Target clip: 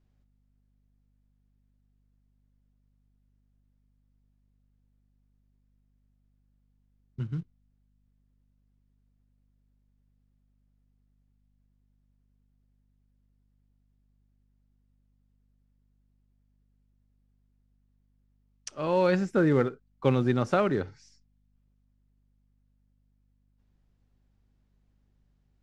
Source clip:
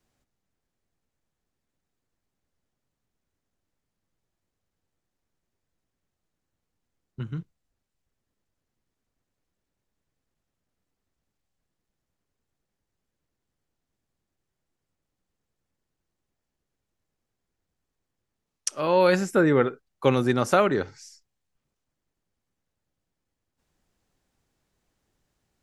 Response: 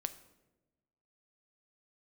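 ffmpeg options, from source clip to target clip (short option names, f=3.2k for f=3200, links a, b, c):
-af "acrusher=bits=6:mode=log:mix=0:aa=0.000001,lowpass=4.8k,lowshelf=f=260:g=9,aeval=exprs='val(0)+0.000891*(sin(2*PI*50*n/s)+sin(2*PI*2*50*n/s)/2+sin(2*PI*3*50*n/s)/3+sin(2*PI*4*50*n/s)/4+sin(2*PI*5*50*n/s)/5)':c=same,volume=-6.5dB"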